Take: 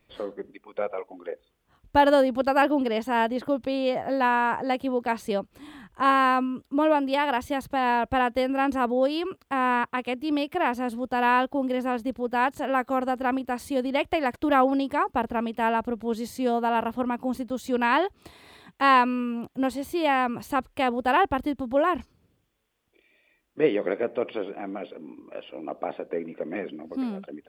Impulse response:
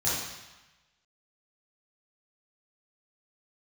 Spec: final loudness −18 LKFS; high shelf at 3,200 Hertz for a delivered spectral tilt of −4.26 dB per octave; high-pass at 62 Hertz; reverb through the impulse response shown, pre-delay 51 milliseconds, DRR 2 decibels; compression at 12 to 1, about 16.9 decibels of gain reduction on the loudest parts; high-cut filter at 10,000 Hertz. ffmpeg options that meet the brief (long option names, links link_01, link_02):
-filter_complex "[0:a]highpass=62,lowpass=10000,highshelf=frequency=3200:gain=-5.5,acompressor=threshold=-32dB:ratio=12,asplit=2[link_01][link_02];[1:a]atrim=start_sample=2205,adelay=51[link_03];[link_02][link_03]afir=irnorm=-1:irlink=0,volume=-12dB[link_04];[link_01][link_04]amix=inputs=2:normalize=0,volume=17dB"